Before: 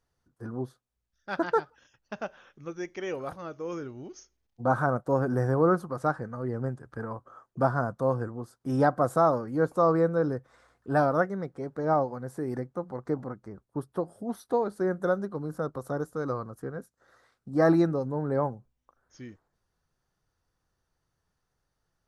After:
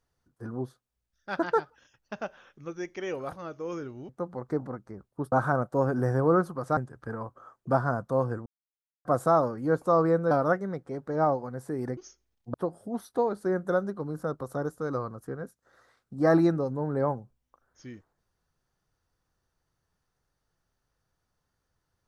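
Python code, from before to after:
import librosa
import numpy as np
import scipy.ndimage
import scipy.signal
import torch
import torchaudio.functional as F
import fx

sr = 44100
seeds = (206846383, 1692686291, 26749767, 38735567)

y = fx.edit(x, sr, fx.swap(start_s=4.09, length_s=0.57, other_s=12.66, other_length_s=1.23),
    fx.cut(start_s=6.11, length_s=0.56),
    fx.silence(start_s=8.36, length_s=0.59),
    fx.cut(start_s=10.21, length_s=0.79), tone=tone)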